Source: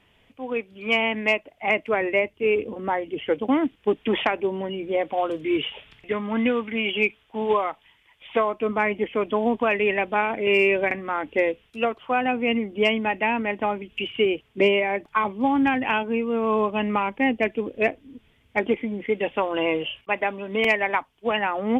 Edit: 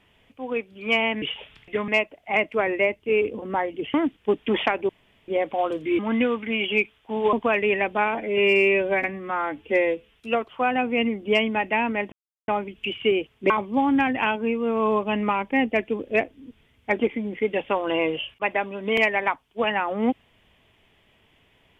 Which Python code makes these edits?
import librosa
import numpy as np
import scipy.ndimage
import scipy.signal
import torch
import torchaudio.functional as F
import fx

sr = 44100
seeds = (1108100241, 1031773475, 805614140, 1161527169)

y = fx.edit(x, sr, fx.cut(start_s=3.28, length_s=0.25),
    fx.room_tone_fill(start_s=4.48, length_s=0.39),
    fx.move(start_s=5.58, length_s=0.66, to_s=1.22),
    fx.cut(start_s=7.58, length_s=1.92),
    fx.stretch_span(start_s=10.32, length_s=1.34, factor=1.5),
    fx.insert_silence(at_s=13.62, length_s=0.36),
    fx.cut(start_s=14.64, length_s=0.53), tone=tone)